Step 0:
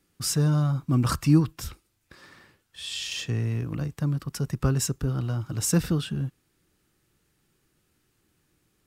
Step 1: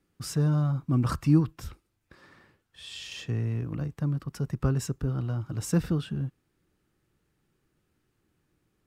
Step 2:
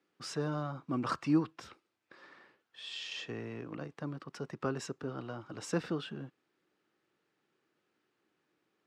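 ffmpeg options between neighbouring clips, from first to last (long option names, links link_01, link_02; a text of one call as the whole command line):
ffmpeg -i in.wav -af "highshelf=frequency=2700:gain=-9.5,volume=-2dB" out.wav
ffmpeg -i in.wav -af "highpass=350,lowpass=4900" out.wav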